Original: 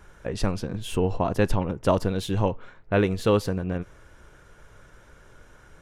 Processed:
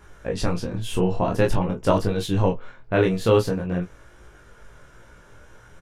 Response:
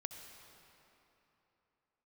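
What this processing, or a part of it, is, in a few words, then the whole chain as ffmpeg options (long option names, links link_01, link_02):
double-tracked vocal: -filter_complex "[0:a]asplit=2[link_01][link_02];[link_02]adelay=17,volume=-6.5dB[link_03];[link_01][link_03]amix=inputs=2:normalize=0,flanger=delay=19.5:depth=7.7:speed=0.47,volume=4.5dB"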